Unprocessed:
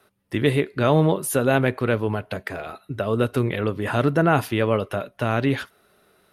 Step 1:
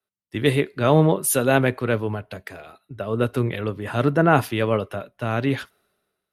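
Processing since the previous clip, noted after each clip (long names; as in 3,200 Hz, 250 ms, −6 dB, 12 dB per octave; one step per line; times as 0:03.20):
multiband upward and downward expander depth 70%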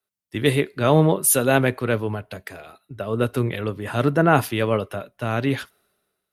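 high-shelf EQ 5,900 Hz +5.5 dB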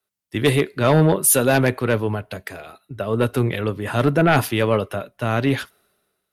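sine wavefolder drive 7 dB, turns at −1 dBFS
level −7.5 dB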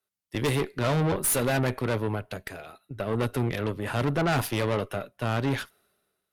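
tube saturation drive 20 dB, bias 0.65
level −1.5 dB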